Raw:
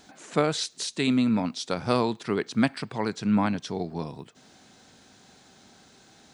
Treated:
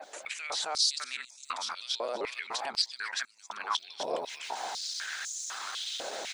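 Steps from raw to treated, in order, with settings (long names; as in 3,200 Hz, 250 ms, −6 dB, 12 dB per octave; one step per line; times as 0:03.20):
reversed piece by piece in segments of 130 ms
repeating echo 264 ms, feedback 24%, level −8.5 dB
automatic gain control gain up to 15.5 dB
brickwall limiter −25.5 dBFS, peak gain reduction 24 dB
harmonic and percussive parts rebalanced harmonic −8 dB
high-pass on a step sequencer 4 Hz 570–6,600 Hz
level +3 dB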